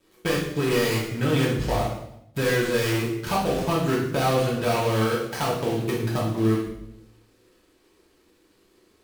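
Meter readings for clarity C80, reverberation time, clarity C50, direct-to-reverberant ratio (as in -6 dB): 6.5 dB, 0.80 s, 3.5 dB, -6.5 dB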